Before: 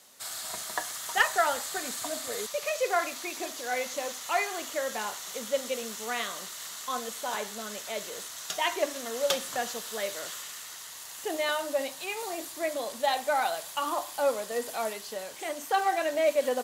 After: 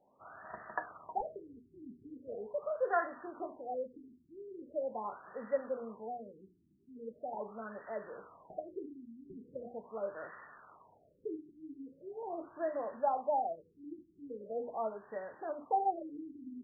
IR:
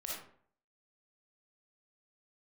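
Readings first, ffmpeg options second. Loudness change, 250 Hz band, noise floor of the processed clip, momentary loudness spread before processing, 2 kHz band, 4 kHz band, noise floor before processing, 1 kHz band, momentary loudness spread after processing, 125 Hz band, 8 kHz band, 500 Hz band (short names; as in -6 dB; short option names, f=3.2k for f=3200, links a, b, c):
-9.0 dB, -4.5 dB, -69 dBFS, 10 LU, -16.5 dB, under -40 dB, -43 dBFS, -7.0 dB, 18 LU, n/a, under -40 dB, -8.0 dB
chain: -af "bandreject=f=60:t=h:w=6,bandreject=f=120:t=h:w=6,bandreject=f=180:t=h:w=6,bandreject=f=240:t=h:w=6,bandreject=f=300:t=h:w=6,bandreject=f=360:t=h:w=6,bandreject=f=420:t=h:w=6,bandreject=f=480:t=h:w=6,afftfilt=real='re*lt(b*sr/1024,380*pow(2000/380,0.5+0.5*sin(2*PI*0.41*pts/sr)))':imag='im*lt(b*sr/1024,380*pow(2000/380,0.5+0.5*sin(2*PI*0.41*pts/sr)))':win_size=1024:overlap=0.75,volume=-4dB"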